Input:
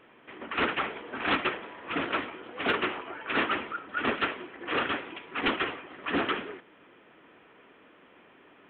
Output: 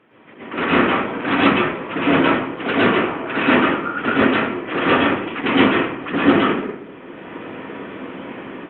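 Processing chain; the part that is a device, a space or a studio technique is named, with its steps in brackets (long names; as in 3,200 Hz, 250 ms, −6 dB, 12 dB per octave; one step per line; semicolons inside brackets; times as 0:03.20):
bass and treble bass +10 dB, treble −8 dB
far-field microphone of a smart speaker (convolution reverb RT60 0.65 s, pre-delay 106 ms, DRR −7.5 dB; high-pass filter 160 Hz 12 dB per octave; automatic gain control gain up to 16 dB; level −1 dB; Opus 48 kbit/s 48,000 Hz)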